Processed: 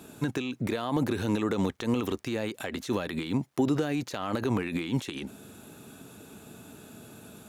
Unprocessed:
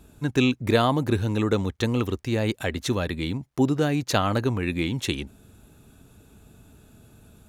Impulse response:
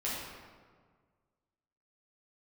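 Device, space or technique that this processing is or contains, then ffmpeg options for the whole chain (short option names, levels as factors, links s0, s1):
de-esser from a sidechain: -filter_complex "[0:a]highpass=190,asplit=2[s0][s1];[s1]highpass=f=4900:p=1,apad=whole_len=329897[s2];[s0][s2]sidechaincompress=threshold=0.00282:ratio=8:attack=4.9:release=36,volume=2.51"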